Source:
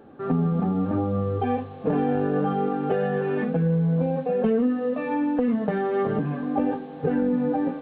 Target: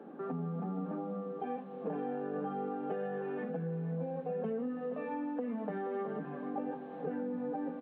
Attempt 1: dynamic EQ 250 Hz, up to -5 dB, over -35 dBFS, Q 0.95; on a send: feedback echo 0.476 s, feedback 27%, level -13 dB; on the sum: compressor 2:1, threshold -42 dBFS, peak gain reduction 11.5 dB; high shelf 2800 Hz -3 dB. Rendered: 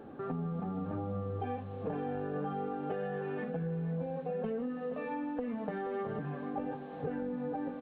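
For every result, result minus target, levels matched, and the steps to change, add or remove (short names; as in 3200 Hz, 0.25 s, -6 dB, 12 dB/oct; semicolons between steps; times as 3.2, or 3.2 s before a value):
4000 Hz band +5.0 dB; 125 Hz band +2.5 dB
change: high shelf 2800 Hz -13.5 dB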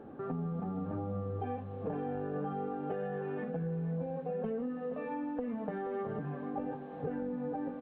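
125 Hz band +3.0 dB
add after compressor: steep high-pass 160 Hz 72 dB/oct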